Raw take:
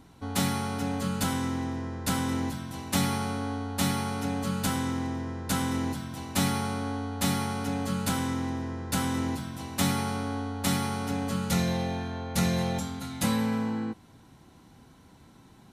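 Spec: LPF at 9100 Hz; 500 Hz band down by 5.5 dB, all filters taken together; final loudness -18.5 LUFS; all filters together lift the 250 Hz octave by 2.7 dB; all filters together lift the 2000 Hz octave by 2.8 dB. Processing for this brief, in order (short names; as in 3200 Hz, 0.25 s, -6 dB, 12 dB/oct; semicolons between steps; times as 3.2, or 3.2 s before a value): LPF 9100 Hz; bell 250 Hz +5 dB; bell 500 Hz -8.5 dB; bell 2000 Hz +4 dB; gain +10 dB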